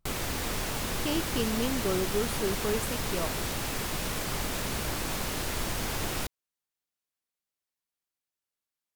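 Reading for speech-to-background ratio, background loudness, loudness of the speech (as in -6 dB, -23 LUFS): -1.0 dB, -32.0 LUFS, -33.0 LUFS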